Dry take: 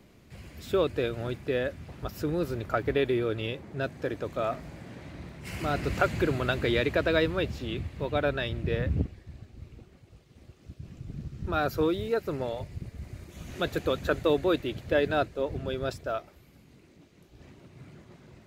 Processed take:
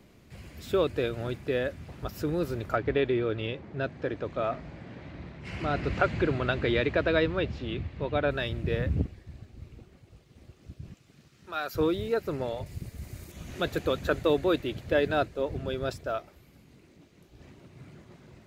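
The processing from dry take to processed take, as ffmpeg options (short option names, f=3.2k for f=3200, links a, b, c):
-filter_complex "[0:a]asettb=1/sr,asplit=3[a][b][c];[a]atrim=end=2.764[d];[b]atrim=start=2.76:end=8.31,asetpts=PTS-STARTPTS,afade=t=in:d=0.004:c=qsin,afade=t=out:st=5.546:d=0.004:c=qsin,lowpass=4.1k[e];[c]atrim=start=8.306[f];[d][e]acrossfade=d=0.004:c1=hsin:c2=qsin[g];[g][f]acrossfade=d=0.004:c1=qsin:c2=hsin,asettb=1/sr,asplit=3[h][i][j];[h]atrim=end=10.944[k];[i]atrim=start=10.94:end=11.75,asetpts=PTS-STARTPTS,afade=t=in:d=0.004:c=qsin,afade=t=out:st=0.806:d=0.004:c=qsin,highpass=f=1.4k:p=1[l];[j]atrim=start=11.746[m];[k][l]acrossfade=d=0.004:c1=hsin:c2=qsin[n];[n][m]acrossfade=d=0.004:c1=qsin:c2=hsin,asettb=1/sr,asplit=3[o][p][q];[o]atrim=end=12.664[r];[p]atrim=start=12.66:end=13.32,asetpts=PTS-STARTPTS,afade=t=in:d=0.004:c=qsin,afade=t=out:st=0.656:d=0.004:c=qsin,aemphasis=mode=production:type=50kf[s];[q]atrim=start=13.316[t];[r][s]acrossfade=d=0.004:c1=hsin:c2=qsin[u];[u][t]acrossfade=d=0.004:c1=qsin:c2=hsin"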